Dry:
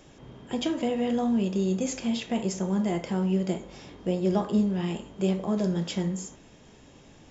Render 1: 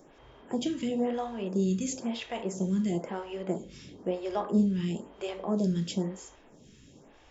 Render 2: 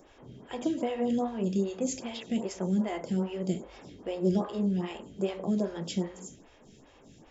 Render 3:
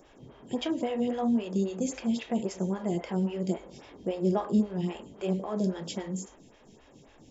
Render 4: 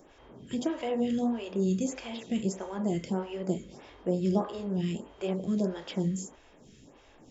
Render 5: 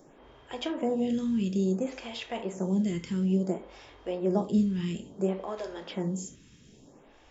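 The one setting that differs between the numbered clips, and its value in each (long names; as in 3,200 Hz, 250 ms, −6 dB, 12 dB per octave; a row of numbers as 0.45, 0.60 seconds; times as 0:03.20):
phaser with staggered stages, speed: 1, 2.5, 3.7, 1.6, 0.58 Hertz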